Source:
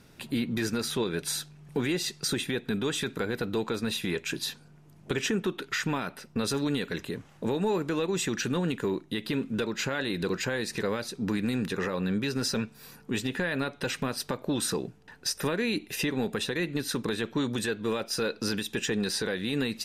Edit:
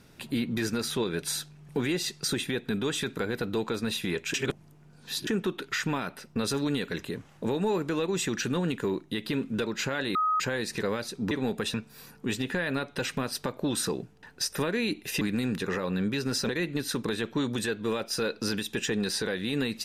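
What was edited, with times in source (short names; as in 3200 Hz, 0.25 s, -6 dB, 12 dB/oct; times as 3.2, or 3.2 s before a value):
4.34–5.27 reverse
10.15–10.4 bleep 1260 Hz -22.5 dBFS
11.31–12.59 swap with 16.06–16.49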